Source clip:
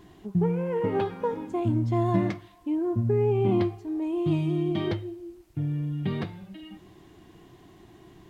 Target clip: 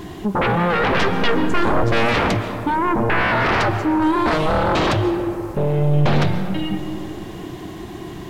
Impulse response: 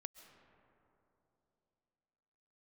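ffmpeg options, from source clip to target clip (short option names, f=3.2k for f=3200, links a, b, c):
-filter_complex "[0:a]bandreject=f=56.56:t=h:w=4,bandreject=f=113.12:t=h:w=4,aeval=exprs='0.282*sin(PI/2*8.91*val(0)/0.282)':c=same[a];[1:a]atrim=start_sample=2205[b];[a][b]afir=irnorm=-1:irlink=0,volume=1.5dB"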